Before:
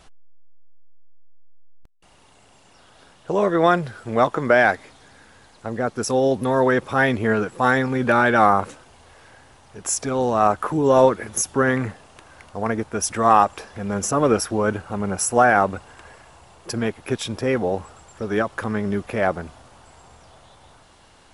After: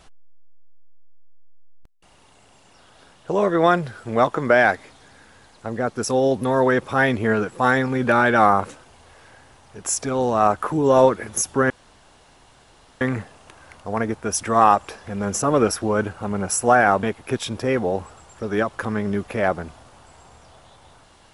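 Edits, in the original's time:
11.7 insert room tone 1.31 s
15.72–16.82 cut

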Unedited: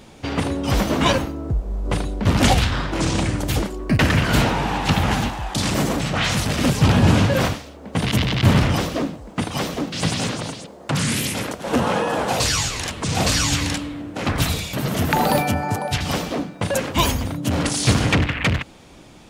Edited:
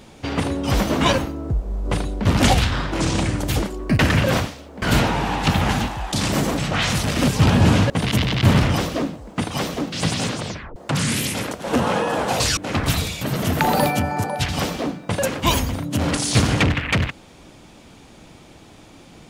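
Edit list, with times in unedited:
7.32–7.9 move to 4.24
10.42 tape stop 0.34 s
12.57–14.09 cut

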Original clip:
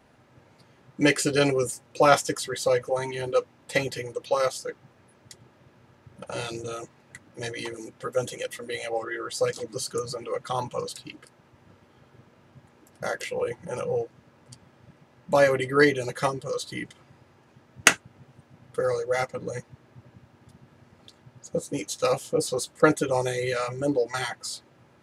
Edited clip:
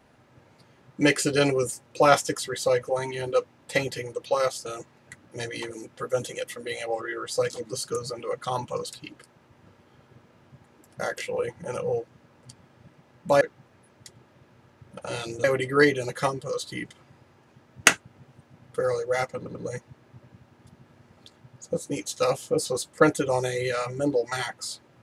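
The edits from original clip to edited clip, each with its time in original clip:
4.66–6.69 move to 15.44
19.37 stutter 0.09 s, 3 plays

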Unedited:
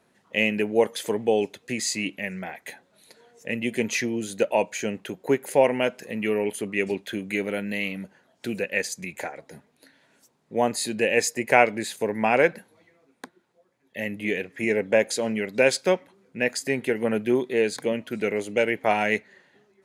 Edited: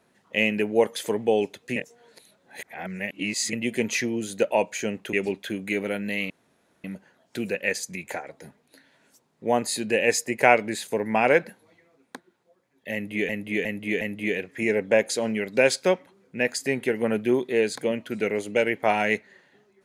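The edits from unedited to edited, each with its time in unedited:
1.76–3.53 reverse
5.13–6.76 cut
7.93 insert room tone 0.54 s
14.02–14.38 loop, 4 plays

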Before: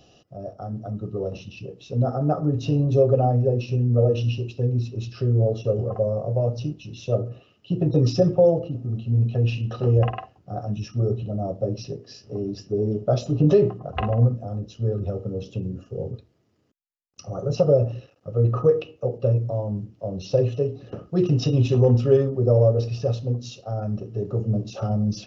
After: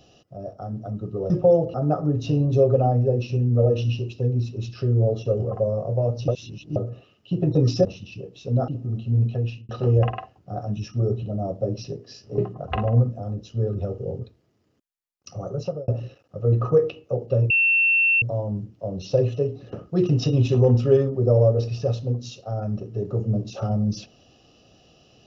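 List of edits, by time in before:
1.3–2.13 swap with 8.24–8.68
6.67–7.15 reverse
9.26–9.69 fade out
12.38–13.63 cut
15.23–15.9 cut
17.3–17.8 fade out
19.42 add tone 2700 Hz -15.5 dBFS 0.72 s

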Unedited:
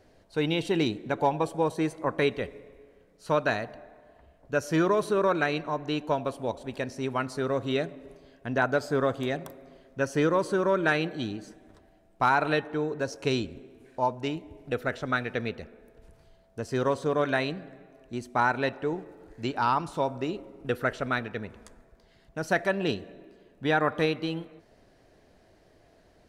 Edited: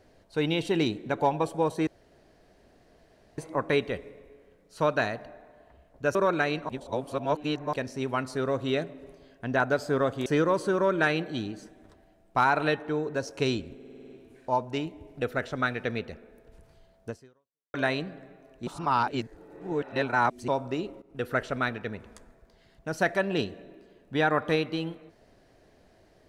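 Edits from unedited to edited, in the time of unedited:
1.87 insert room tone 1.51 s
4.64–5.17 cut
5.71–6.75 reverse
9.28–10.11 cut
13.6 stutter 0.05 s, 8 plays
16.59–17.24 fade out exponential
18.17–19.98 reverse
20.52–20.84 fade in, from -14.5 dB

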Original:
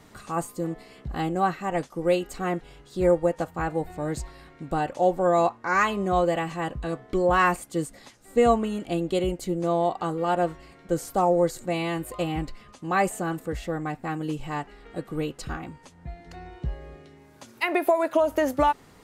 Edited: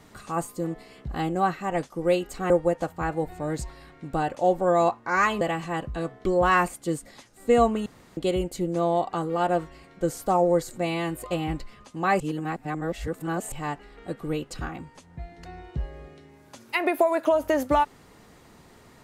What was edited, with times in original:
2.5–3.08 cut
5.99–6.29 cut
8.74–9.05 room tone
13.08–14.4 reverse

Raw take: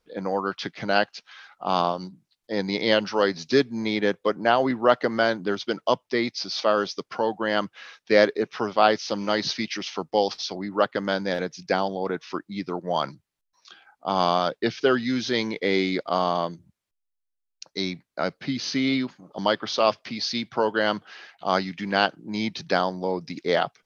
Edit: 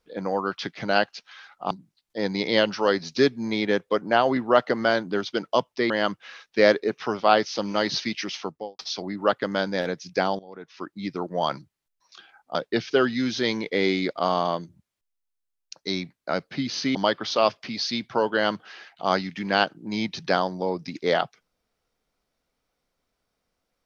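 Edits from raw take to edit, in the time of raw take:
1.71–2.05 cut
6.24–7.43 cut
9.88–10.32 studio fade out
11.92–12.53 fade in quadratic, from -17.5 dB
14.08–14.45 cut
18.85–19.37 cut

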